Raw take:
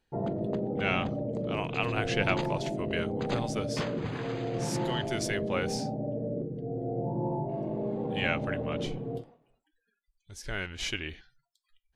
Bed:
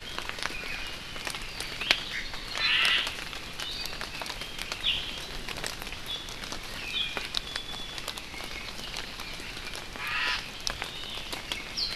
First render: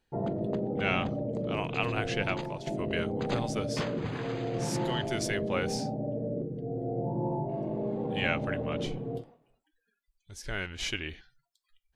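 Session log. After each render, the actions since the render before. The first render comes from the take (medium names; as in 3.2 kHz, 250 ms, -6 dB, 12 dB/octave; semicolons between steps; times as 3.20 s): 1.84–2.67 s: fade out, to -9 dB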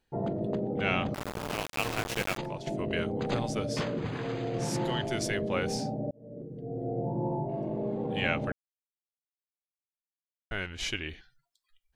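1.14–2.38 s: small samples zeroed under -28 dBFS; 6.11–6.87 s: fade in; 8.52–10.51 s: mute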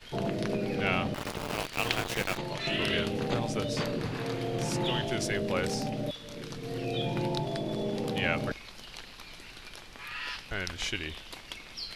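add bed -8.5 dB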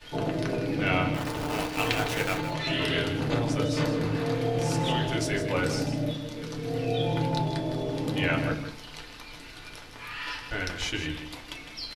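on a send: delay 158 ms -10 dB; on the sum: FDN reverb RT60 0.39 s, low-frequency decay 1.2×, high-frequency decay 0.4×, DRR 0.5 dB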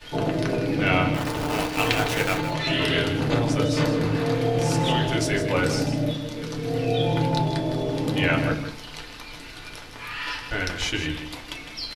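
trim +4.5 dB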